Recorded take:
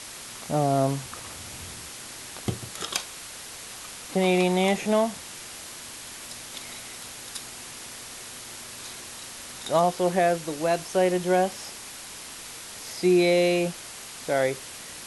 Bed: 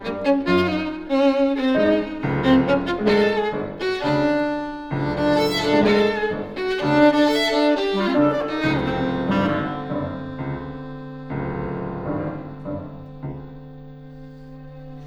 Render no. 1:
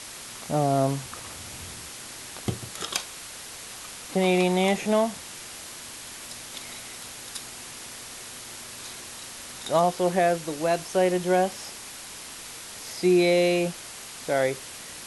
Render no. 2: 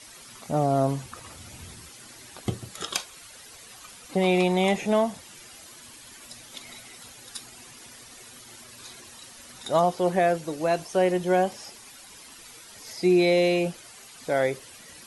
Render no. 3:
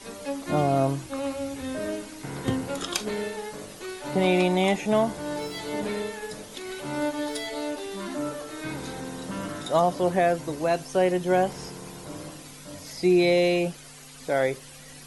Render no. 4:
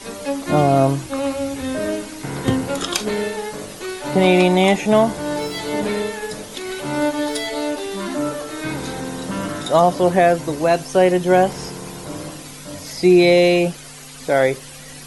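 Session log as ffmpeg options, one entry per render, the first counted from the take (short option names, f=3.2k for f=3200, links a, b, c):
-af anull
-af "afftdn=nr=11:nf=-41"
-filter_complex "[1:a]volume=-13.5dB[a];[0:a][a]amix=inputs=2:normalize=0"
-af "volume=8dB,alimiter=limit=-3dB:level=0:latency=1"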